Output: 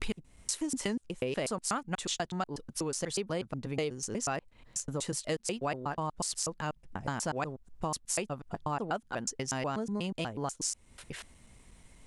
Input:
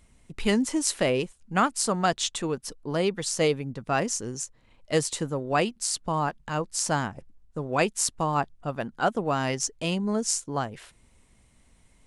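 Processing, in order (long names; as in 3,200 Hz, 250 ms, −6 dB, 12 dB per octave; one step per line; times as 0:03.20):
slices reordered back to front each 122 ms, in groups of 4
downward compressor 3 to 1, threshold −38 dBFS, peak gain reduction 15 dB
level +3.5 dB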